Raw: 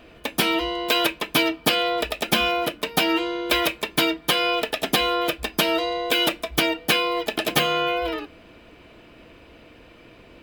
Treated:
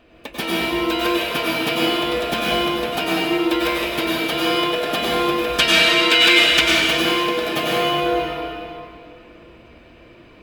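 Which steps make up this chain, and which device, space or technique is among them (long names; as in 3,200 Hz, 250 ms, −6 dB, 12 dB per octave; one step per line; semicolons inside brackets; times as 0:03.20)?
0:05.50–0:06.61: flat-topped bell 3,500 Hz +12 dB 3 octaves
swimming-pool hall (convolution reverb RT60 2.5 s, pre-delay 88 ms, DRR −6 dB; high-shelf EQ 5,700 Hz −5 dB)
level −5 dB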